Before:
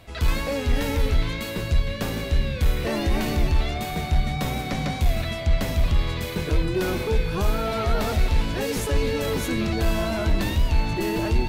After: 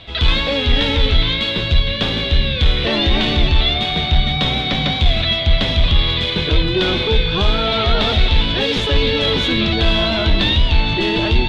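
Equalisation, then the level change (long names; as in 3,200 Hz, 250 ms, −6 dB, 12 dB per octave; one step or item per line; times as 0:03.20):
low-pass with resonance 3,500 Hz, resonance Q 6.7
+6.0 dB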